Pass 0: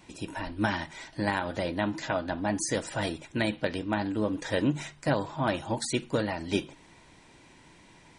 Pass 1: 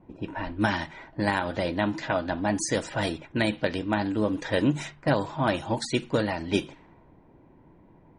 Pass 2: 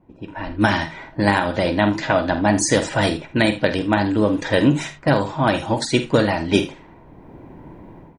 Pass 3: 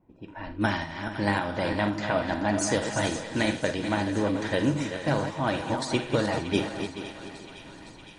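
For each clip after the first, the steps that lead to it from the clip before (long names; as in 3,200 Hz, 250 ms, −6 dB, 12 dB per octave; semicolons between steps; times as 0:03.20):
low-pass that shuts in the quiet parts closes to 610 Hz, open at −25 dBFS; level +3 dB
automatic gain control gain up to 16 dB; on a send: ambience of single reflections 49 ms −11.5 dB, 79 ms −15.5 dB; on the sum: level −1.5 dB
feedback delay that plays each chunk backwards 216 ms, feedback 56%, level −8 dB; feedback echo with a high-pass in the loop 511 ms, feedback 75%, high-pass 730 Hz, level −13 dB; level −9 dB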